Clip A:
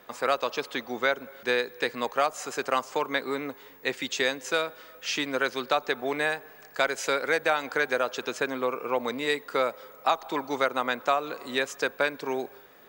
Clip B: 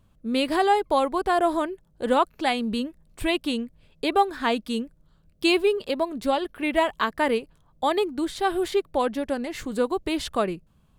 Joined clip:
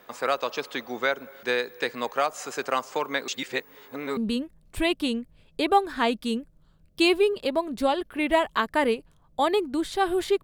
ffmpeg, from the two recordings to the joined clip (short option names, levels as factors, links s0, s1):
-filter_complex "[0:a]apad=whole_dur=10.43,atrim=end=10.43,asplit=2[s0][s1];[s0]atrim=end=3.282[s2];[s1]atrim=start=3.278:end=4.172,asetpts=PTS-STARTPTS,areverse[s3];[1:a]atrim=start=2.608:end=8.87[s4];[s2][s3]acrossfade=d=0.004:c1=hsin:c2=hsin[s5];[s5][s4]acrossfade=d=0.004:c1=hsin:c2=hsin"